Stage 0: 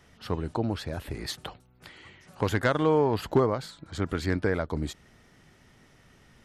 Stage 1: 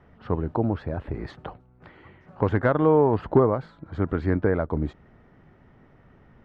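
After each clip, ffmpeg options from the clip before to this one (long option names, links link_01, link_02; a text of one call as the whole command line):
ffmpeg -i in.wav -af "lowpass=1300,volume=4.5dB" out.wav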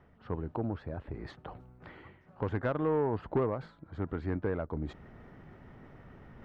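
ffmpeg -i in.wav -af "asoftclip=type=tanh:threshold=-12dB,areverse,acompressor=mode=upward:threshold=-31dB:ratio=2.5,areverse,volume=-9dB" out.wav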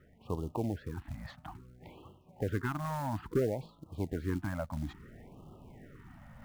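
ffmpeg -i in.wav -af "acrusher=bits=6:mode=log:mix=0:aa=0.000001,afftfilt=real='re*(1-between(b*sr/1024,360*pow(1900/360,0.5+0.5*sin(2*PI*0.59*pts/sr))/1.41,360*pow(1900/360,0.5+0.5*sin(2*PI*0.59*pts/sr))*1.41))':imag='im*(1-between(b*sr/1024,360*pow(1900/360,0.5+0.5*sin(2*PI*0.59*pts/sr))/1.41,360*pow(1900/360,0.5+0.5*sin(2*PI*0.59*pts/sr))*1.41))':win_size=1024:overlap=0.75" out.wav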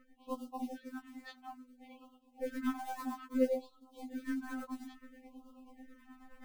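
ffmpeg -i in.wav -af "tremolo=f=9.3:d=0.63,afftfilt=real='re*3.46*eq(mod(b,12),0)':imag='im*3.46*eq(mod(b,12),0)':win_size=2048:overlap=0.75,volume=3dB" out.wav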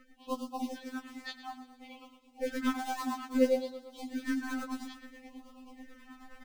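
ffmpeg -i in.wav -filter_complex "[0:a]aecho=1:1:114|228|342|456|570:0.211|0.11|0.0571|0.0297|0.0155,acrossover=split=530|5900[link_01][link_02][link_03];[link_02]crystalizer=i=4:c=0[link_04];[link_01][link_04][link_03]amix=inputs=3:normalize=0,volume=4dB" out.wav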